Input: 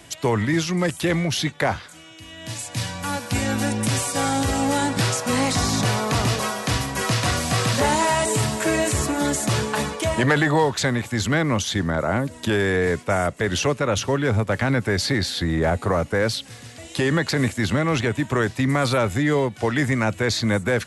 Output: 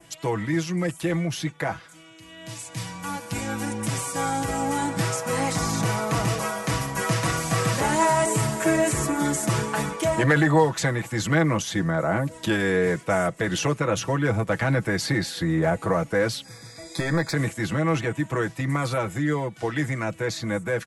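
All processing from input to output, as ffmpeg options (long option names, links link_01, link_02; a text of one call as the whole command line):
ffmpeg -i in.wav -filter_complex "[0:a]asettb=1/sr,asplit=3[link_01][link_02][link_03];[link_01]atrim=end=16.444[link_04];[link_02]atrim=start=16.44:end=17.34,asetpts=PTS-STARTPTS,afade=type=in:duration=0.004:curve=qsin,afade=type=out:start_time=0.896:duration=0.004:curve=qsin,aeval=exprs='clip(val(0),-1,0.1)':channel_layout=same,aeval=exprs='val(0)+0.00447*sin(2*PI*4900*n/s)':channel_layout=same,asuperstop=centerf=2900:order=8:qfactor=3.7[link_05];[link_03]atrim=start=17.336[link_06];[link_04][link_05]acrossfade=duration=0.004:curve1=hsin:curve2=qsin[link_07];[link_07][link_06]acrossfade=duration=0.004:curve1=qsin:curve2=hsin,aecho=1:1:6.1:0.68,adynamicequalizer=threshold=0.00794:dfrequency=3900:dqfactor=1.4:tfrequency=3900:tqfactor=1.4:attack=5:release=100:ratio=0.375:range=3.5:mode=cutabove:tftype=bell,dynaudnorm=framelen=800:gausssize=13:maxgain=11.5dB,volume=-7dB" out.wav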